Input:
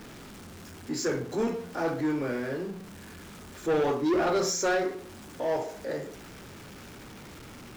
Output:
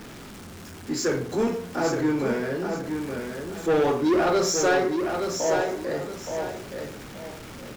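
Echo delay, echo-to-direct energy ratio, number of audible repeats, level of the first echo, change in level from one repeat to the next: 871 ms, −5.5 dB, 2, −6.0 dB, −10.5 dB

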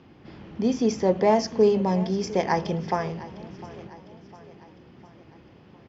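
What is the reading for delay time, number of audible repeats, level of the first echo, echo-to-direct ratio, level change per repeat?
704 ms, 3, −18.0 dB, −16.5 dB, −5.5 dB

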